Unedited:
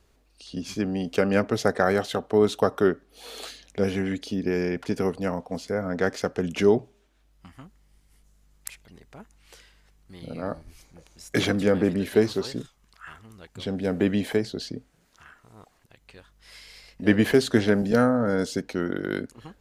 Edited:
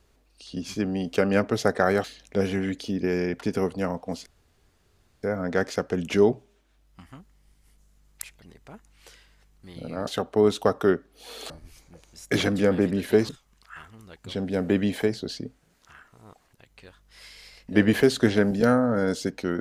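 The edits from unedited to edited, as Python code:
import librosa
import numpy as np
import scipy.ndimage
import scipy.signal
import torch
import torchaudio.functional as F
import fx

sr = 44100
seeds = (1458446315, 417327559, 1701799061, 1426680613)

y = fx.edit(x, sr, fx.move(start_s=2.04, length_s=1.43, to_s=10.53),
    fx.insert_room_tone(at_s=5.69, length_s=0.97),
    fx.cut(start_s=12.32, length_s=0.28), tone=tone)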